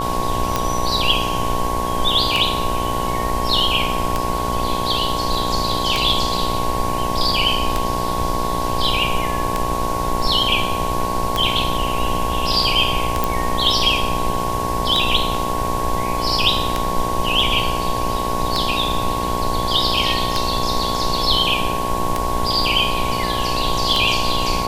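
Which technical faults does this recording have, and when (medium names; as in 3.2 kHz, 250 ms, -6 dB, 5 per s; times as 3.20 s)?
buzz 60 Hz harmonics 18 -25 dBFS
tick 33 1/3 rpm -4 dBFS
whine 1.1 kHz -23 dBFS
13.24 s: pop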